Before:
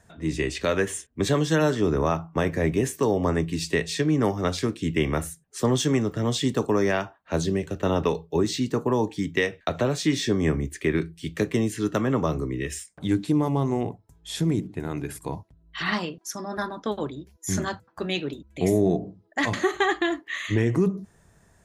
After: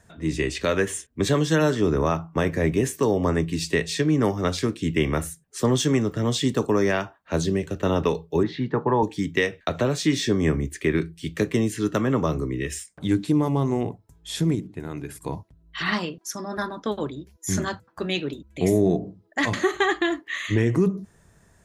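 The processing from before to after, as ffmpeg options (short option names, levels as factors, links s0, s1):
-filter_complex "[0:a]asettb=1/sr,asplit=3[s0][s1][s2];[s0]atrim=end=8.434[s3];[s1]atrim=start=8.43:end=9.03,asetpts=PTS-STARTPTS,afade=t=in:d=0.004:c=qsin,afade=t=out:st=0.596:d=0.004:c=qsin,highpass=120,equalizer=f=140:t=q:w=4:g=6,equalizer=f=260:t=q:w=4:g=-4,equalizer=f=870:t=q:w=4:g=9,equalizer=f=1700:t=q:w=4:g=6,equalizer=f=2700:t=q:w=4:g=-8,lowpass=f=3100:w=0.5412,lowpass=f=3100:w=1.3066[s4];[s2]atrim=start=9.026[s5];[s3][s4]acrossfade=d=0.004:c1=hsin:c2=qsin[s6];[s6][s5]acrossfade=d=0.004:c1=qsin:c2=hsin,asplit=3[s7][s8][s9];[s7]atrim=end=14.552[s10];[s8]atrim=start=14.548:end=15.212,asetpts=PTS-STARTPTS,volume=0.631[s11];[s9]atrim=start=15.208[s12];[s10][s11]acrossfade=d=0.004:c1=hsin:c2=hsin[s13];[s13][s12]acrossfade=d=0.004:c1=hsin:c2=hsin,equalizer=f=760:w=2.7:g=-2.5,volume=1.19"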